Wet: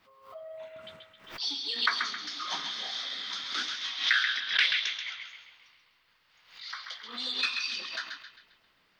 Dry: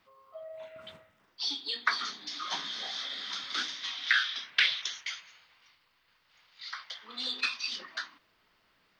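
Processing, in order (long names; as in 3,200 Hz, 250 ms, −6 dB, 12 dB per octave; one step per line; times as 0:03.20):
0:04.40–0:05.25: low-pass that shuts in the quiet parts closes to 1,200 Hz, open at −24 dBFS
feedback echo with a band-pass in the loop 133 ms, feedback 49%, band-pass 2,700 Hz, level −4 dB
background raised ahead of every attack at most 110 dB per second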